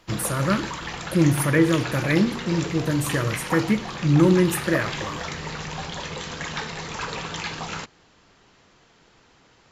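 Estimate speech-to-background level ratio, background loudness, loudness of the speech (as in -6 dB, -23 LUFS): 8.5 dB, -31.0 LUFS, -22.5 LUFS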